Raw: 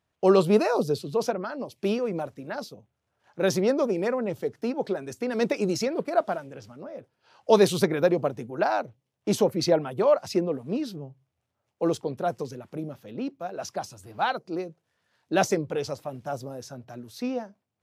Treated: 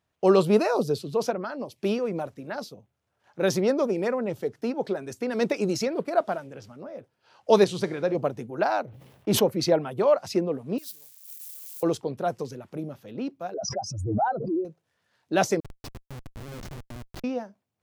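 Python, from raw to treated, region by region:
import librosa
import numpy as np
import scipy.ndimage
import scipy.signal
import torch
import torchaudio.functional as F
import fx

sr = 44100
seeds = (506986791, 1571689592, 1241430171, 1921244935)

y = fx.chain(x, sr, fx.lowpass(hz=8000.0, slope=12),
    fx.comb_fb(f0_hz=60.0, decay_s=0.83, harmonics='all', damping=0.0, mix_pct=50), at=(7.64, 8.15))
y = fx.chain(y, sr, fx.peak_eq(hz=6700.0, db=-9.0, octaves=1.3),
    fx.sustainer(db_per_s=50.0), at=(8.83, 9.45))
y = fx.chain(y, sr, fx.crossing_spikes(level_db=-33.0),
    fx.differentiator(), at=(10.78, 11.83))
y = fx.chain(y, sr, fx.spec_expand(power=2.6),
    fx.peak_eq(hz=280.0, db=6.0, octaves=0.99),
    fx.pre_swell(db_per_s=42.0), at=(13.54, 14.65))
y = fx.chain(y, sr, fx.over_compress(threshold_db=-37.0, ratio=-0.5),
    fx.schmitt(flips_db=-34.0), at=(15.6, 17.24))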